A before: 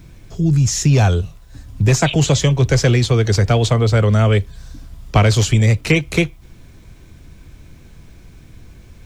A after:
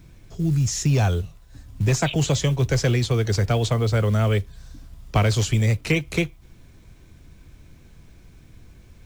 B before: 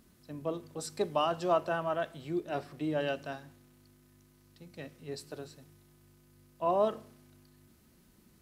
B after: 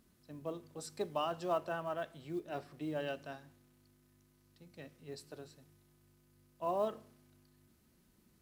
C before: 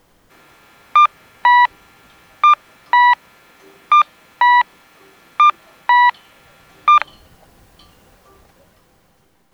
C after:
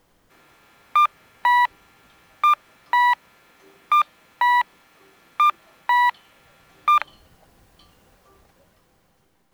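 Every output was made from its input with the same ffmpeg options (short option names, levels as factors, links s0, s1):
-af "acrusher=bits=8:mode=log:mix=0:aa=0.000001,volume=0.473"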